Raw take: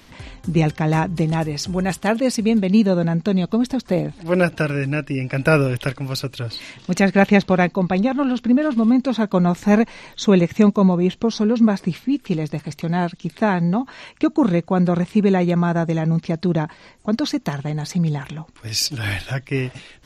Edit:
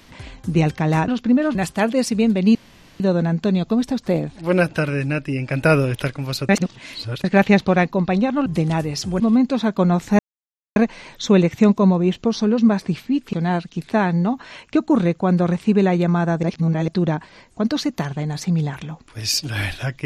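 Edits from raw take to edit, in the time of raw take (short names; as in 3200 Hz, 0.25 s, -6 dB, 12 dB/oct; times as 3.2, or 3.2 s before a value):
1.08–1.82 swap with 8.28–8.75
2.82 insert room tone 0.45 s
6.31–7.06 reverse
9.74 insert silence 0.57 s
12.31–12.81 cut
15.91–16.36 reverse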